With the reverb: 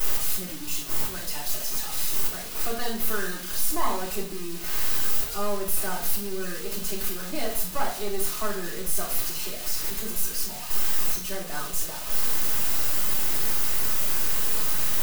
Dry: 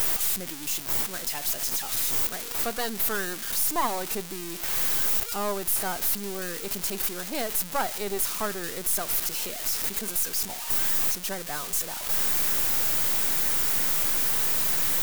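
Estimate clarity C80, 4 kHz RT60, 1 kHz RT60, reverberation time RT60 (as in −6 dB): 11.5 dB, 0.45 s, 0.45 s, 0.50 s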